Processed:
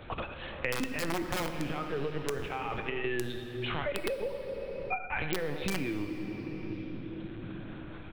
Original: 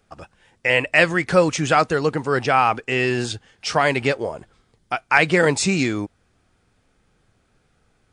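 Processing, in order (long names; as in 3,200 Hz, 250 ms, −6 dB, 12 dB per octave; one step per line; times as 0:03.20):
0:03.83–0:05.02: three sine waves on the formant tracks
brickwall limiter −13 dBFS, peak gain reduction 11.5 dB
notch comb filter 680 Hz
0:02.41–0:03.05: compressor whose output falls as the input rises −28 dBFS, ratio −0.5
repeating echo 83 ms, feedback 15%, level −12 dB
harmonic and percussive parts rebalanced percussive −8 dB
0:00.71–0:01.46: hollow resonant body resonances 250/1,300/2,700 Hz, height 16 dB, ringing for 50 ms
linear-prediction vocoder at 8 kHz pitch kept
wrap-around overflow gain 13.5 dB
on a send at −7.5 dB: convolution reverb RT60 2.4 s, pre-delay 5 ms
on the sum: multiband upward and downward compressor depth 100%
level −9 dB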